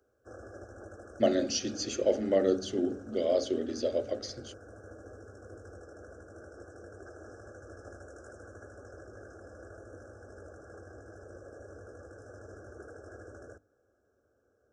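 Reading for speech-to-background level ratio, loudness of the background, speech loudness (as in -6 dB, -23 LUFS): 19.0 dB, -49.5 LUFS, -30.5 LUFS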